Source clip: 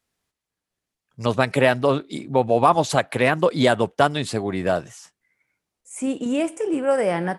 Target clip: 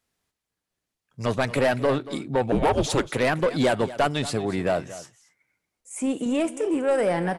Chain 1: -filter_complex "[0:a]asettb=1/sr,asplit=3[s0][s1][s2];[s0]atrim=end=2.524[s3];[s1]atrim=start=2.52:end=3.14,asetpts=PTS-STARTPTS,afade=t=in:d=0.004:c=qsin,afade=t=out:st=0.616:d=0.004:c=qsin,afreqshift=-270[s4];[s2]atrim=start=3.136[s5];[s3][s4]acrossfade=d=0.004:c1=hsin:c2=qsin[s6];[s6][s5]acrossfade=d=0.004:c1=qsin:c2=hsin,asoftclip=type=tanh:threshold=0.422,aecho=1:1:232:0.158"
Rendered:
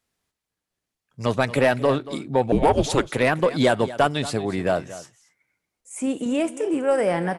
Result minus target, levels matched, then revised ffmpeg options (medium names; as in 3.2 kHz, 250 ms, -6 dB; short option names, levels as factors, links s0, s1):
saturation: distortion -8 dB
-filter_complex "[0:a]asettb=1/sr,asplit=3[s0][s1][s2];[s0]atrim=end=2.524[s3];[s1]atrim=start=2.52:end=3.14,asetpts=PTS-STARTPTS,afade=t=in:d=0.004:c=qsin,afade=t=out:st=0.616:d=0.004:c=qsin,afreqshift=-270[s4];[s2]atrim=start=3.136[s5];[s3][s4]acrossfade=d=0.004:c1=hsin:c2=qsin[s6];[s6][s5]acrossfade=d=0.004:c1=qsin:c2=hsin,asoftclip=type=tanh:threshold=0.178,aecho=1:1:232:0.158"